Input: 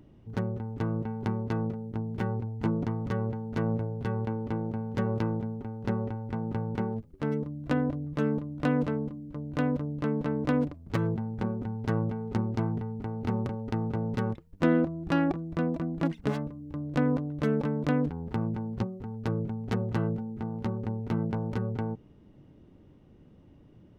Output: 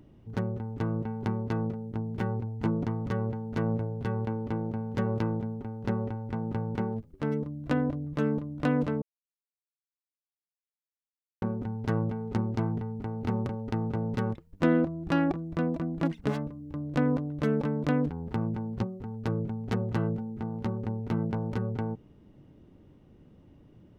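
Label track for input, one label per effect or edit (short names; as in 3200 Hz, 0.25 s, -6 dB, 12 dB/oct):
9.020000	11.420000	mute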